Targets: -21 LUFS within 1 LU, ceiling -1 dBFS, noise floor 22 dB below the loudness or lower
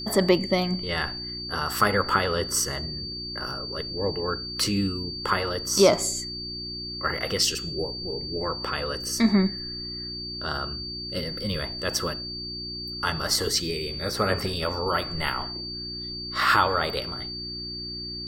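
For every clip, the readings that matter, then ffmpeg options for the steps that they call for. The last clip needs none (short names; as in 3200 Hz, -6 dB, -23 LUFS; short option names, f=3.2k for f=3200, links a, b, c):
hum 60 Hz; harmonics up to 360 Hz; hum level -38 dBFS; steady tone 4600 Hz; tone level -33 dBFS; loudness -26.5 LUFS; peak -5.5 dBFS; loudness target -21.0 LUFS
-> -af "bandreject=f=60:t=h:w=4,bandreject=f=120:t=h:w=4,bandreject=f=180:t=h:w=4,bandreject=f=240:t=h:w=4,bandreject=f=300:t=h:w=4,bandreject=f=360:t=h:w=4"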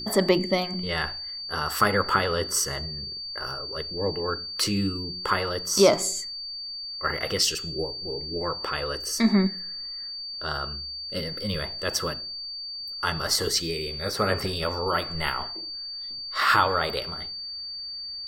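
hum none; steady tone 4600 Hz; tone level -33 dBFS
-> -af "bandreject=f=4.6k:w=30"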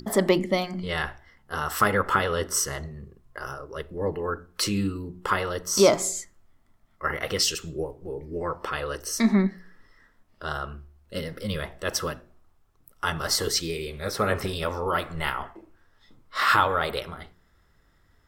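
steady tone none; loudness -26.5 LUFS; peak -5.5 dBFS; loudness target -21.0 LUFS
-> -af "volume=5.5dB,alimiter=limit=-1dB:level=0:latency=1"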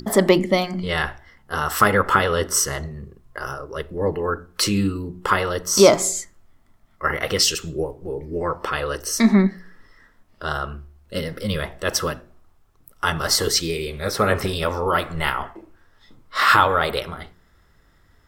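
loudness -21.0 LUFS; peak -1.0 dBFS; noise floor -58 dBFS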